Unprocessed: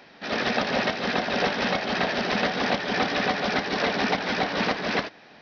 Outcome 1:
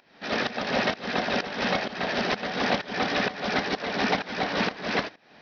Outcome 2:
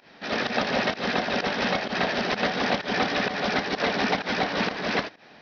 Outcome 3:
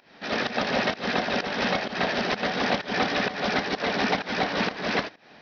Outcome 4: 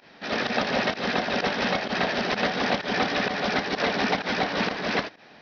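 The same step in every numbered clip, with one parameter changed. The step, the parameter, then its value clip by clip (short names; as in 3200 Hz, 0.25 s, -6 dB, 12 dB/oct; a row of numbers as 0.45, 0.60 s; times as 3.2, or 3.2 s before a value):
pump, release: 396, 103, 203, 70 ms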